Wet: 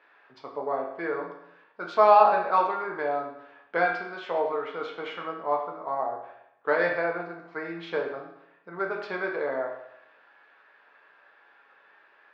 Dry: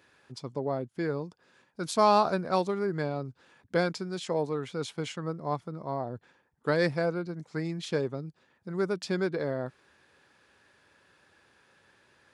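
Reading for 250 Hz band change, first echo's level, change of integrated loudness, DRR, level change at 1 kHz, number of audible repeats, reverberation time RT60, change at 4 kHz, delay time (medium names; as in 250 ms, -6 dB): -6.5 dB, no echo, +3.5 dB, -0.5 dB, +7.0 dB, no echo, 0.80 s, -5.0 dB, no echo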